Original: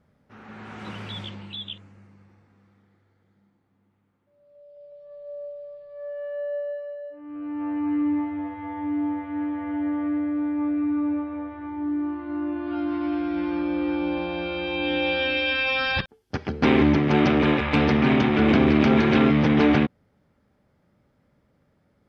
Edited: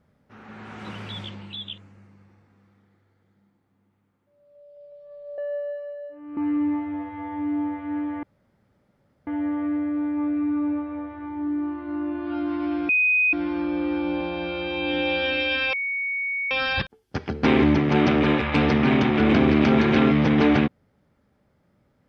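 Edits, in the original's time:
5.38–6.39 cut
7.38–7.82 cut
9.68 insert room tone 1.04 s
13.3 add tone 2500 Hz -16.5 dBFS 0.44 s
15.7 add tone 2230 Hz -24 dBFS 0.78 s

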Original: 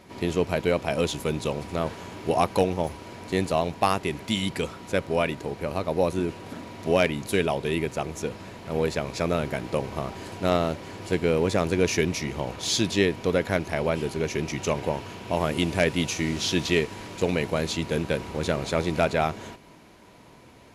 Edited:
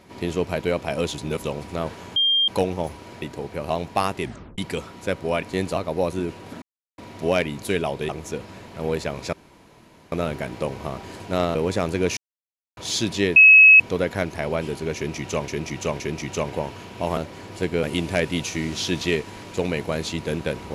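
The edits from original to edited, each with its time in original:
1.18–1.44 reverse
2.16–2.48 bleep 3200 Hz -16 dBFS
3.22–3.56 swap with 5.29–5.77
4.09 tape stop 0.35 s
6.62 insert silence 0.36 s
7.73–8 cut
9.24 insert room tone 0.79 s
10.67–11.33 move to 15.47
11.95–12.55 mute
13.14 add tone 2570 Hz -6.5 dBFS 0.44 s
14.3–14.82 loop, 3 plays

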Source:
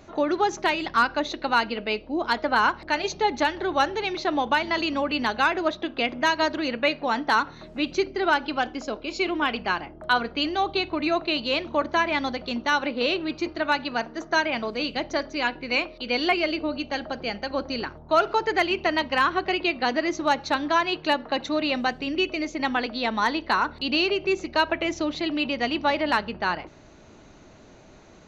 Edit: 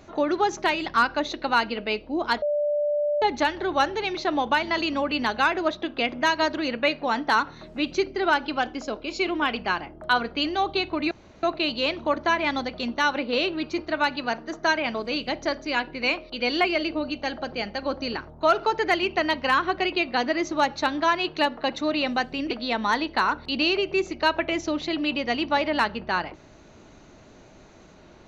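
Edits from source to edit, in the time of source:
2.42–3.22 bleep 589 Hz -21 dBFS
11.11 insert room tone 0.32 s
22.19–22.84 cut

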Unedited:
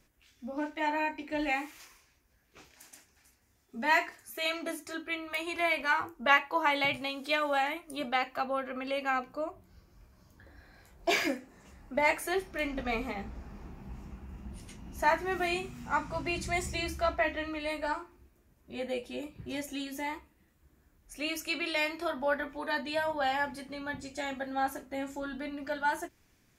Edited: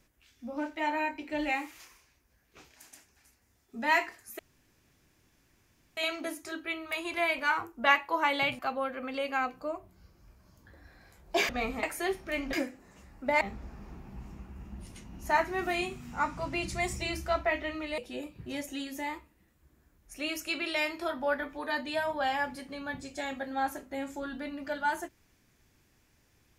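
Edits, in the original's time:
4.39 insert room tone 1.58 s
7.01–8.32 cut
11.22–12.1 swap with 12.8–13.14
17.71–18.98 cut

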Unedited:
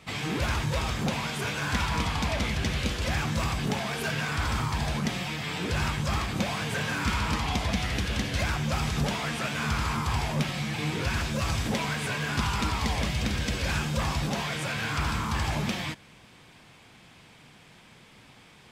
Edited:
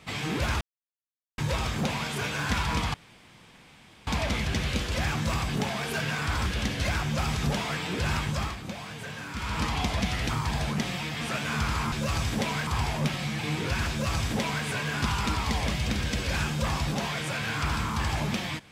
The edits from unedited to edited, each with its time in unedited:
0.61 insert silence 0.77 s
2.17 insert room tone 1.13 s
4.56–5.48 swap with 8–9.31
6.02–7.36 dip -8.5 dB, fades 0.29 s
11.25–12 copy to 10.02

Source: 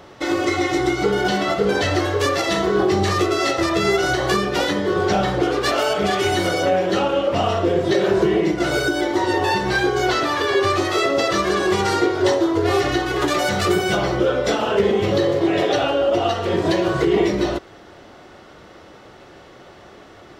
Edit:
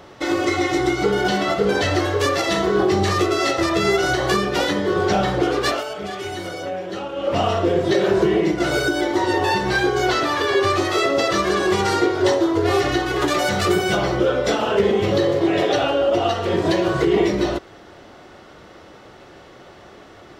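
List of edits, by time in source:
5.68–7.32 dip -9.5 dB, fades 0.16 s

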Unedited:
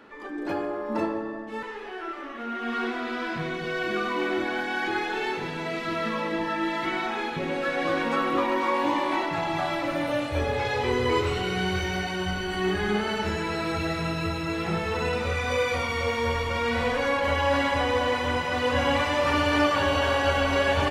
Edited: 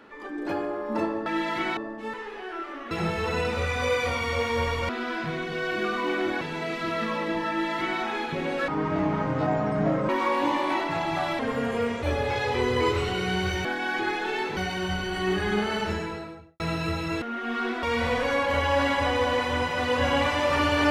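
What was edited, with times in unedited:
2.4–3.01 swap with 14.59–16.57
4.53–5.45 move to 11.94
6.53–7.04 copy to 1.26
7.72–8.51 speed 56%
9.81–10.32 speed 80%
13.16–13.97 studio fade out

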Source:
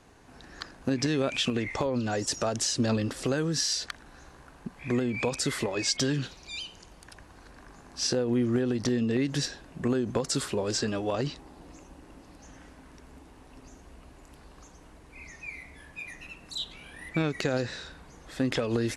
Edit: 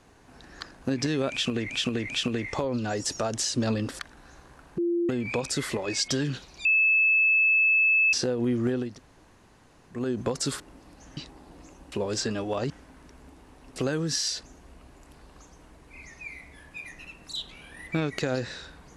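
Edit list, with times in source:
1.31–1.7 loop, 3 plays
3.21–3.88 move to 13.65
4.67–4.98 bleep 344 Hz -22.5 dBFS
6.54–8.02 bleep 2610 Hz -18 dBFS
8.77–9.88 room tone, crossfade 0.24 s
10.49–11.27 swap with 12.02–12.59

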